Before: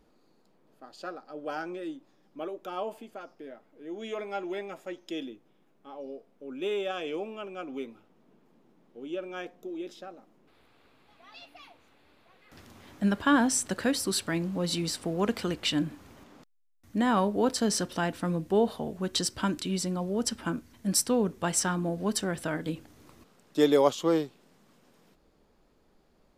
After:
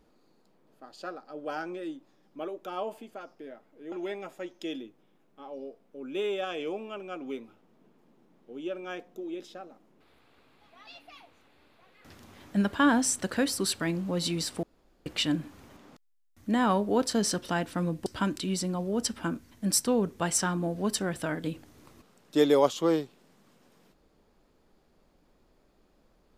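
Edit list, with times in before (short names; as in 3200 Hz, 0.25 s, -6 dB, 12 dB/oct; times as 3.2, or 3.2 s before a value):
3.92–4.39 cut
15.1–15.53 room tone
18.53–19.28 cut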